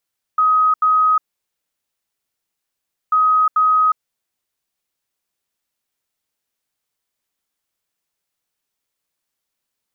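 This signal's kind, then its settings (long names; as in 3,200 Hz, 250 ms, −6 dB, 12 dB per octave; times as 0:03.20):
beeps in groups sine 1,260 Hz, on 0.36 s, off 0.08 s, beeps 2, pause 1.94 s, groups 2, −11 dBFS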